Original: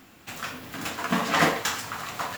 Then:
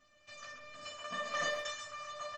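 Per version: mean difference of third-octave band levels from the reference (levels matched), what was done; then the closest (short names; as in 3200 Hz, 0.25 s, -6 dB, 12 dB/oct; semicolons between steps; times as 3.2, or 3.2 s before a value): 10.5 dB: resonator 600 Hz, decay 0.24 s, harmonics all, mix 100%; downsampling 16000 Hz; speakerphone echo 0.13 s, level -6 dB; gain +4.5 dB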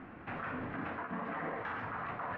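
14.5 dB: LPF 1900 Hz 24 dB/oct; reverse; compressor 6:1, threshold -35 dBFS, peak gain reduction 17 dB; reverse; limiter -35 dBFS, peak gain reduction 9 dB; gain +4.5 dB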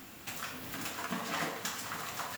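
5.5 dB: high shelf 6300 Hz +7 dB; compressor 2.5:1, threshold -42 dBFS, peak gain reduction 17.5 dB; echo 0.521 s -11 dB; gain +1 dB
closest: third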